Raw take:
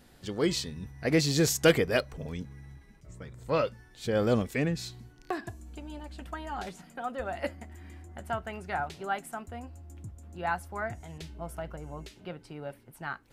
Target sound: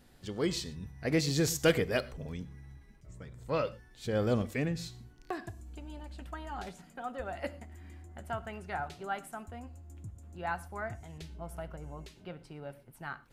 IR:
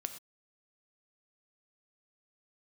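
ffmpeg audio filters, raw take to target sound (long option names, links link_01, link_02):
-filter_complex "[0:a]asplit=2[link_01][link_02];[1:a]atrim=start_sample=2205,lowshelf=frequency=140:gain=9.5[link_03];[link_02][link_03]afir=irnorm=-1:irlink=0,volume=-3dB[link_04];[link_01][link_04]amix=inputs=2:normalize=0,volume=-8.5dB"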